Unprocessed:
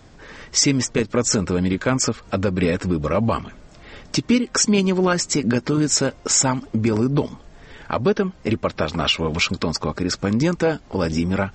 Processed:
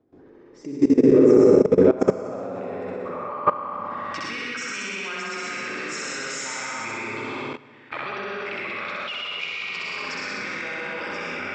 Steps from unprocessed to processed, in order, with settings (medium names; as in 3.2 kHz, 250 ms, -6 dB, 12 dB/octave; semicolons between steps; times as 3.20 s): flutter echo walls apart 11 m, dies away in 1.4 s; band-pass sweep 350 Hz -> 2.2 kHz, 0.91–4.76 s; reverberation RT60 2.2 s, pre-delay 99 ms, DRR -4.5 dB; level held to a coarse grid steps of 18 dB; trim +5 dB